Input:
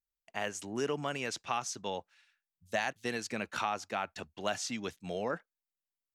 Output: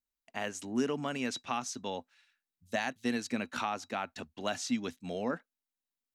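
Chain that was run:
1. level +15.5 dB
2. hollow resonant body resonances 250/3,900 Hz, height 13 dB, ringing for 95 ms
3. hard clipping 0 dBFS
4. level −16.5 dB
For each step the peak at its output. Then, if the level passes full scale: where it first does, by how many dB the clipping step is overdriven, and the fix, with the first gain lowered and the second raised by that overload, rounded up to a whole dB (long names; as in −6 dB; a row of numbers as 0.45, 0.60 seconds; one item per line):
−2.0, −1.5, −1.5, −18.0 dBFS
no step passes full scale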